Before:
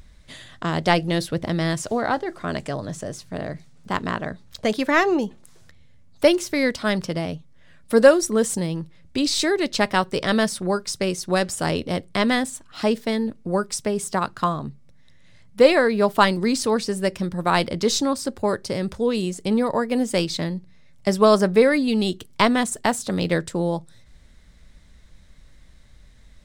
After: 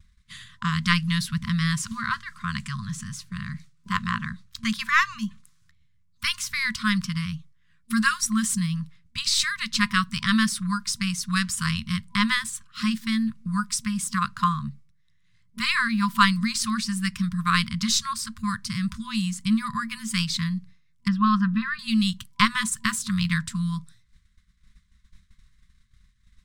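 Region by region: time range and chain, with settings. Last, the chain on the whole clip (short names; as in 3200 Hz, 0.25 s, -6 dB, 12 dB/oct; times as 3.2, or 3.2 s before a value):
21.08–21.79 Butterworth band-stop 2200 Hz, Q 5.4 + air absorption 360 m
whole clip: FFT band-reject 230–1000 Hz; expander -39 dBFS; gain +1 dB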